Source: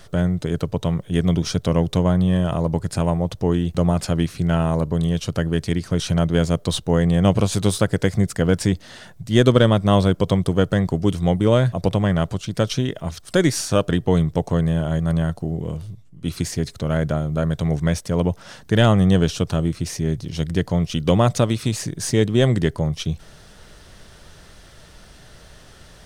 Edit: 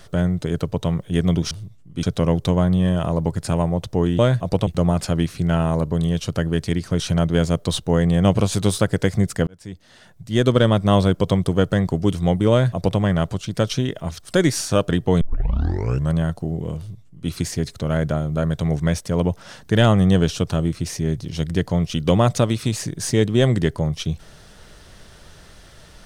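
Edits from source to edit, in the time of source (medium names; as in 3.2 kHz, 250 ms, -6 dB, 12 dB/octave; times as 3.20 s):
8.47–9.80 s: fade in
11.51–11.99 s: copy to 3.67 s
14.21 s: tape start 0.92 s
15.78–16.30 s: copy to 1.51 s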